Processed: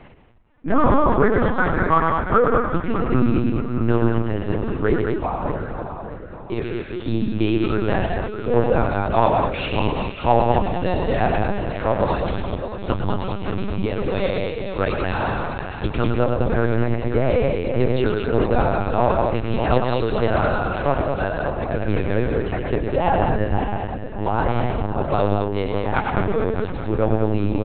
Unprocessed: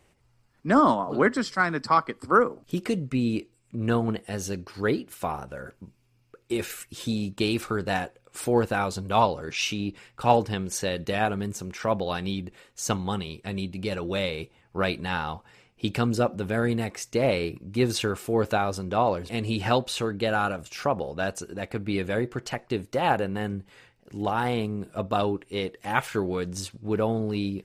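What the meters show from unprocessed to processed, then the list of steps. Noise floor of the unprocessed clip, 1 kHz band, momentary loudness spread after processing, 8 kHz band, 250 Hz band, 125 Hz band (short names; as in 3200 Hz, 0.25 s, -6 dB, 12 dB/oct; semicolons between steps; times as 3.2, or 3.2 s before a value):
-64 dBFS, +5.0 dB, 8 LU, under -40 dB, +5.5 dB, +8.5 dB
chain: regenerating reverse delay 0.307 s, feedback 61%, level -8 dB; in parallel at -4 dB: hard clip -21 dBFS, distortion -10 dB; on the sum: high shelf 2600 Hz -11.5 dB; loudspeakers at several distances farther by 37 m -5 dB, 70 m -4 dB; reverse; upward compressor, threshold -33 dBFS; reverse; flange 0.11 Hz, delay 3.2 ms, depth 6.8 ms, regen -57%; LPC vocoder at 8 kHz pitch kept; gain +5.5 dB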